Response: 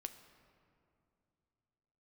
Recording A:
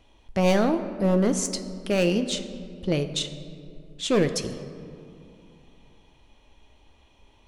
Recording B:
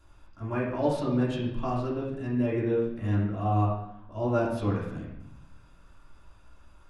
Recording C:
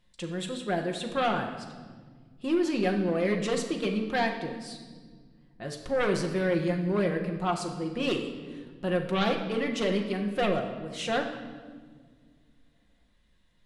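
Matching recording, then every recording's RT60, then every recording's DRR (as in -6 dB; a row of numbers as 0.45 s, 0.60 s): A; 2.7 s, 0.75 s, 1.6 s; 8.0 dB, -6.5 dB, 2.0 dB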